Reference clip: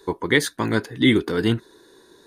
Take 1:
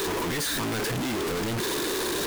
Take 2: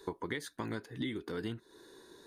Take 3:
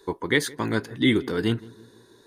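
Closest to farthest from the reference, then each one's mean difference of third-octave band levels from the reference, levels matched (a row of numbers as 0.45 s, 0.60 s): 3, 2, 1; 1.5 dB, 5.5 dB, 18.5 dB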